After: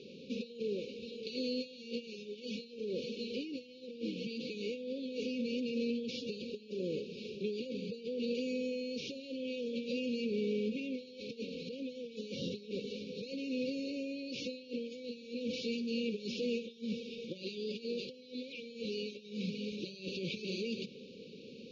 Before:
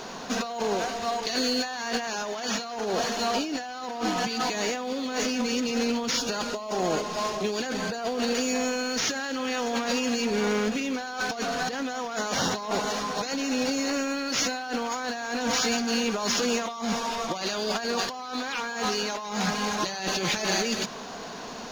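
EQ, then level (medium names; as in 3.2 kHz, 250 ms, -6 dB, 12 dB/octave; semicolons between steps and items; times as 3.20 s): brick-wall FIR band-stop 560–2200 Hz; cabinet simulation 110–3700 Hz, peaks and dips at 300 Hz -4 dB, 2.2 kHz -7 dB, 3.2 kHz -5 dB; -7.0 dB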